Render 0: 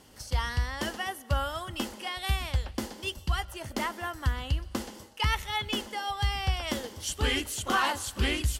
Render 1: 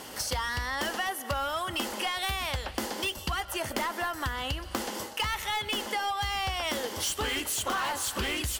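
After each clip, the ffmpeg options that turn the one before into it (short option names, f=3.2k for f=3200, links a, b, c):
-filter_complex "[0:a]asplit=2[a][b];[b]highpass=f=720:p=1,volume=18dB,asoftclip=type=tanh:threshold=-16dB[c];[a][c]amix=inputs=2:normalize=0,lowpass=f=1.5k:p=1,volume=-6dB,aemphasis=mode=production:type=50fm,acompressor=threshold=-35dB:ratio=6,volume=6dB"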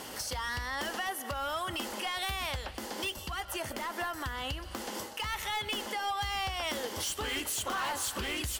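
-af "alimiter=level_in=2.5dB:limit=-24dB:level=0:latency=1:release=320,volume=-2.5dB"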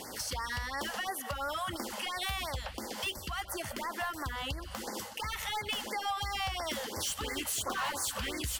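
-af "afftfilt=real='re*(1-between(b*sr/1024,290*pow(3200/290,0.5+0.5*sin(2*PI*2.9*pts/sr))/1.41,290*pow(3200/290,0.5+0.5*sin(2*PI*2.9*pts/sr))*1.41))':imag='im*(1-between(b*sr/1024,290*pow(3200/290,0.5+0.5*sin(2*PI*2.9*pts/sr))/1.41,290*pow(3200/290,0.5+0.5*sin(2*PI*2.9*pts/sr))*1.41))':win_size=1024:overlap=0.75"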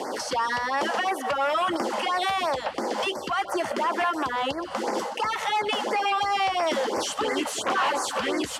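-filter_complex "[0:a]acrossover=split=270|1200|3900[a][b][c][d];[b]aeval=exprs='0.0447*sin(PI/2*2.82*val(0)/0.0447)':c=same[e];[a][e][c][d]amix=inputs=4:normalize=0,highpass=200,lowpass=7.3k,volume=5dB"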